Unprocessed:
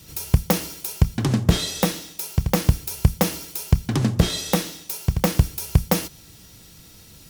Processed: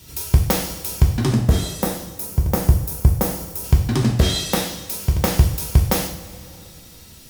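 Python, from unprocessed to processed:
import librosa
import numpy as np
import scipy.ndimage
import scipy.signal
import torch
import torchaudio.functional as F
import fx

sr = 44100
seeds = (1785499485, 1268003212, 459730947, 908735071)

y = fx.peak_eq(x, sr, hz=3300.0, db=-10.0, octaves=2.1, at=(1.34, 3.64))
y = fx.rev_double_slope(y, sr, seeds[0], early_s=0.52, late_s=2.9, knee_db=-18, drr_db=1.0)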